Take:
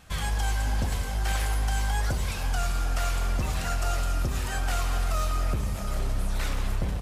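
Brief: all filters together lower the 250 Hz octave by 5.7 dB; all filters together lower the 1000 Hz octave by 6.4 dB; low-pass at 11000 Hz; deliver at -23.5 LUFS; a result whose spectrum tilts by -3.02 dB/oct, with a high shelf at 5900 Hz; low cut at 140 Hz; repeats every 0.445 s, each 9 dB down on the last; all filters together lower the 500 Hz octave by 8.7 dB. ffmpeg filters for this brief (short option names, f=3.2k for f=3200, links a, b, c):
-af "highpass=140,lowpass=11k,equalizer=f=250:t=o:g=-4.5,equalizer=f=500:t=o:g=-8.5,equalizer=f=1k:t=o:g=-6.5,highshelf=f=5.9k:g=5,aecho=1:1:445|890|1335|1780:0.355|0.124|0.0435|0.0152,volume=11dB"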